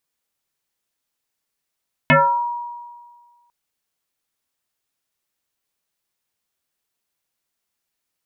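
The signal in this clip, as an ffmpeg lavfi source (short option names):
-f lavfi -i "aevalsrc='0.398*pow(10,-3*t/1.66)*sin(2*PI*956*t+4.5*pow(10,-3*t/0.46)*sin(2*PI*0.42*956*t))':d=1.4:s=44100"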